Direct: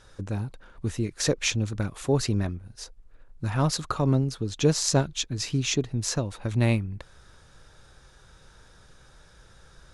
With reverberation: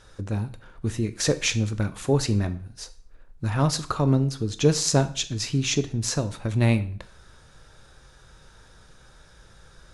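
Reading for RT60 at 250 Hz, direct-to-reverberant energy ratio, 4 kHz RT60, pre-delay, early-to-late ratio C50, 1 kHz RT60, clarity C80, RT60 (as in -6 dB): 0.50 s, 11.0 dB, 0.45 s, 6 ms, 16.0 dB, 0.50 s, 19.5 dB, 0.50 s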